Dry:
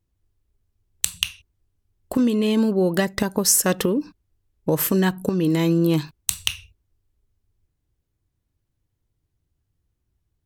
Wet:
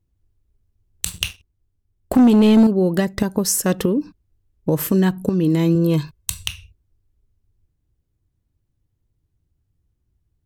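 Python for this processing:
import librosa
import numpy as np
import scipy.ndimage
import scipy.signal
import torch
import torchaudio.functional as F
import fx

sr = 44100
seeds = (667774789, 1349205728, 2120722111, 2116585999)

y = fx.low_shelf(x, sr, hz=440.0, db=8.0)
y = fx.leveller(y, sr, passes=2, at=(1.06, 2.67))
y = fx.comb(y, sr, ms=1.9, depth=0.52, at=(5.75, 6.43))
y = y * librosa.db_to_amplitude(-3.0)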